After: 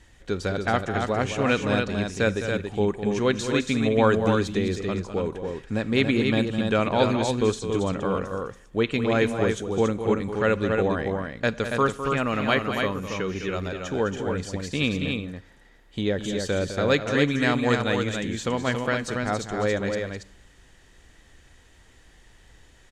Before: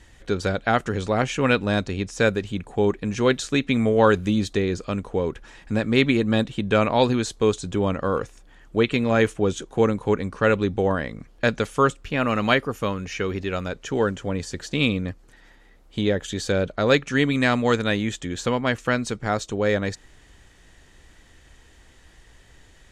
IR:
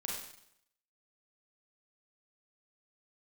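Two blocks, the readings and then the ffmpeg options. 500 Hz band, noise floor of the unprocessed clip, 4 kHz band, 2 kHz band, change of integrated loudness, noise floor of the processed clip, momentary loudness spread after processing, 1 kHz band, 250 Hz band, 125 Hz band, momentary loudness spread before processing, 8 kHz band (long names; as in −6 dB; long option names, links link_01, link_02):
−1.5 dB, −53 dBFS, −2.0 dB, −2.0 dB, −2.0 dB, −55 dBFS, 8 LU, −2.0 dB, −1.5 dB, −1.5 dB, 9 LU, −2.0 dB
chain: -filter_complex "[0:a]aecho=1:1:207|279.9:0.316|0.562,asplit=2[link_01][link_02];[1:a]atrim=start_sample=2205[link_03];[link_02][link_03]afir=irnorm=-1:irlink=0,volume=-19dB[link_04];[link_01][link_04]amix=inputs=2:normalize=0,volume=-4dB"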